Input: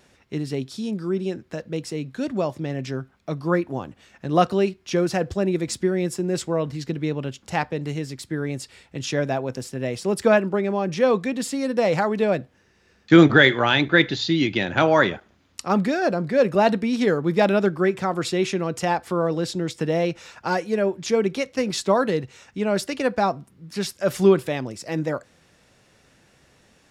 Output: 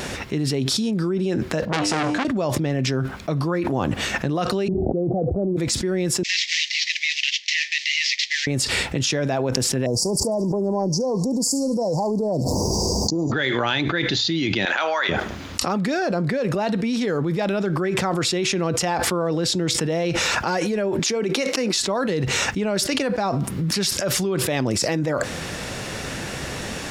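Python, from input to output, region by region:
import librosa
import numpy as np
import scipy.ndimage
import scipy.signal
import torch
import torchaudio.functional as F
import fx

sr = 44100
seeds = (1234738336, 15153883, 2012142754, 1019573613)

y = fx.chain(x, sr, fx.lowpass(hz=8000.0, slope=12),
    fx.comb_fb(f0_hz=100.0, decay_s=0.68, harmonics='all', damping=0.0, mix_pct=80),
    fx.transformer_sat(knee_hz=2700.0), at=(1.65, 2.25))
y = fx.chain(y, sr, fx.steep_lowpass(hz=780.0, slope=96),
    fx.env_flatten(amount_pct=100), at=(4.68, 5.57))
y = fx.chain(y, sr, fx.cvsd(bps=32000),
    fx.steep_highpass(hz=1900.0, slope=96),
    fx.high_shelf(hz=3300.0, db=-5.0), at=(6.23, 8.47))
y = fx.chain(y, sr, fx.cheby1_bandstop(low_hz=1000.0, high_hz=4700.0, order=5),
    fx.echo_wet_highpass(ms=72, feedback_pct=31, hz=4700.0, wet_db=-4.0),
    fx.pre_swell(db_per_s=49.0), at=(9.86, 13.32))
y = fx.chain(y, sr, fx.highpass(hz=930.0, slope=12),
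    fx.high_shelf(hz=8600.0, db=-9.5), at=(14.65, 15.09))
y = fx.chain(y, sr, fx.highpass(hz=220.0, slope=24),
    fx.notch(hz=3300.0, q=19.0), at=(20.99, 21.79))
y = fx.dynamic_eq(y, sr, hz=5400.0, q=0.86, threshold_db=-41.0, ratio=4.0, max_db=4)
y = fx.env_flatten(y, sr, amount_pct=100)
y = F.gain(torch.from_numpy(y), -12.5).numpy()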